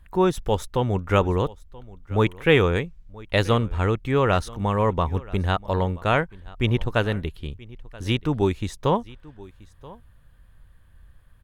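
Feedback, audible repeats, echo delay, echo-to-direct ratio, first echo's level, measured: repeats not evenly spaced, 1, 980 ms, −21.5 dB, −21.5 dB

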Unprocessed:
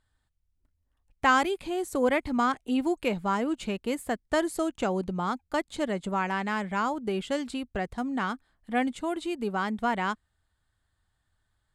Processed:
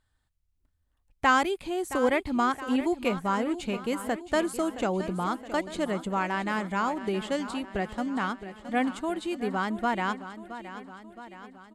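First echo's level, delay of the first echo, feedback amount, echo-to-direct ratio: −13.0 dB, 669 ms, 58%, −11.0 dB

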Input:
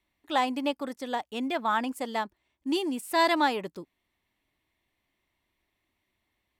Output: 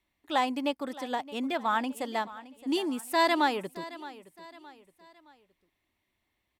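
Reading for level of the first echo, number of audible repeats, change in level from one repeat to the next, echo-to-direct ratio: −17.0 dB, 3, −7.5 dB, −16.0 dB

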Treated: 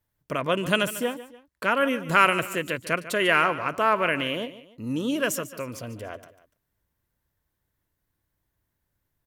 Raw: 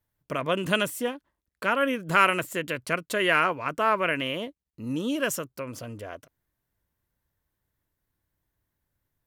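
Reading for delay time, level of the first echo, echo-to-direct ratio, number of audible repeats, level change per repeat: 146 ms, −15.0 dB, −14.5 dB, 2, −7.5 dB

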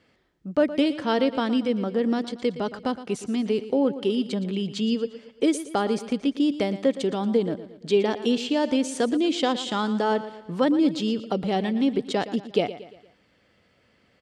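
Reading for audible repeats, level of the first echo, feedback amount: 4, −14.0 dB, 46%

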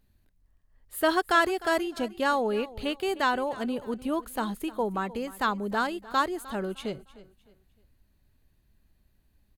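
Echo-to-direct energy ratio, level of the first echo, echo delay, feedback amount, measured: −18.0 dB, −18.5 dB, 305 ms, 32%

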